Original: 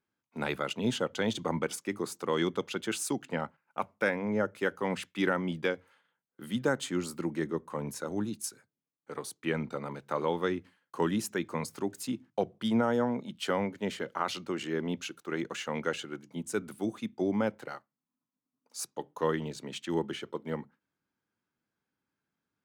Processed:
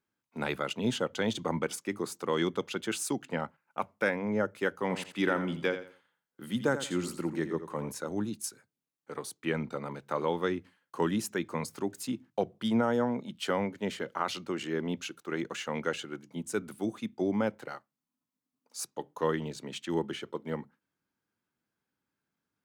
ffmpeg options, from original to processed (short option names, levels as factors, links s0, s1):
-filter_complex "[0:a]asettb=1/sr,asplit=3[s0][s1][s2];[s0]atrim=end=4.804[s3];[s1]atrim=start=4.8:end=7.92,asetpts=PTS-STARTPTS,afade=t=in:d=0.004:c=qsin,afade=t=out:st=3.116:d=0.004:c=qsin,aecho=1:1:85|170|255:0.282|0.0705|0.0176,atrim=end_sample=137592[s4];[s2]atrim=start=7.916[s5];[s3][s4]acrossfade=d=0.004:c1=hsin:c2=qsin[s6];[s6][s5]acrossfade=d=0.004:c1=qsin:c2=hsin"